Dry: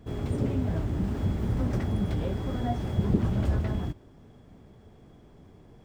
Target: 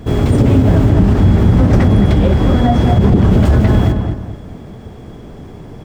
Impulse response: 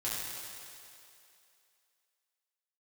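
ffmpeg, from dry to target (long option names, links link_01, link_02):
-filter_complex "[0:a]asettb=1/sr,asplit=3[link_01][link_02][link_03];[link_01]atrim=end=0.894[link_04];[link_02]atrim=start=0.89:end=3.32,asetpts=PTS-STARTPTS,afade=type=in:duration=0.004:curve=qsin,afade=type=out:start_time=2.426:duration=0.004:curve=qsin,highshelf=frequency=7300:gain=-7.5[link_05];[link_03]atrim=start=3.316[link_06];[link_04][link_05]acrossfade=duration=0.004:curve1=hsin:curve2=qsin[link_07];[link_07][link_06]acrossfade=duration=0.004:curve1=qsin:curve2=hsin,asplit=2[link_08][link_09];[link_09]adelay=216,lowpass=frequency=2200:poles=1,volume=-6dB,asplit=2[link_10][link_11];[link_11]adelay=216,lowpass=frequency=2200:poles=1,volume=0.35,asplit=2[link_12][link_13];[link_13]adelay=216,lowpass=frequency=2200:poles=1,volume=0.35,asplit=2[link_14][link_15];[link_15]adelay=216,lowpass=frequency=2200:poles=1,volume=0.35[link_16];[link_08][link_10][link_12][link_14][link_16]amix=inputs=5:normalize=0,alimiter=level_in=20dB:limit=-1dB:release=50:level=0:latency=1,volume=-1dB"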